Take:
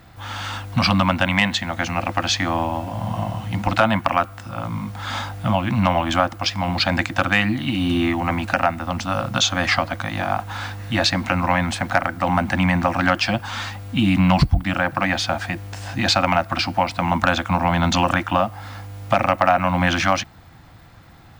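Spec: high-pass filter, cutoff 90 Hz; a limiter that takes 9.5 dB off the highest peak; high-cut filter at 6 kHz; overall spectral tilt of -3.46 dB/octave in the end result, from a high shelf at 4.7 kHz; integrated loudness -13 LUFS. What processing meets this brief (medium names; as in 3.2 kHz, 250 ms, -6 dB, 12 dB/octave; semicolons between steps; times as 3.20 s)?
high-pass 90 Hz; low-pass 6 kHz; treble shelf 4.7 kHz +8 dB; trim +10 dB; peak limiter -1 dBFS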